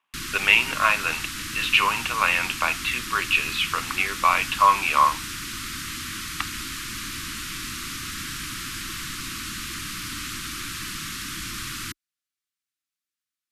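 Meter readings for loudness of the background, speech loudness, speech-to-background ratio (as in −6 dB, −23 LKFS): −31.0 LKFS, −21.5 LKFS, 9.5 dB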